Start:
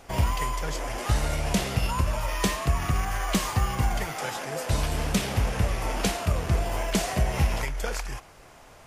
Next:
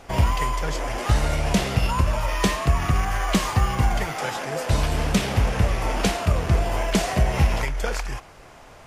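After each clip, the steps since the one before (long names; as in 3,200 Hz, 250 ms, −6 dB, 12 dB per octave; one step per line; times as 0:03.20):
high-shelf EQ 7,400 Hz −7.5 dB
level +4.5 dB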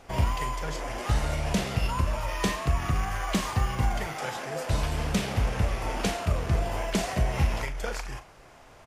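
double-tracking delay 39 ms −11 dB
level −6 dB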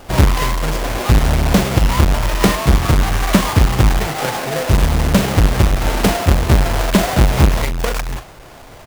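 each half-wave held at its own peak
level +8.5 dB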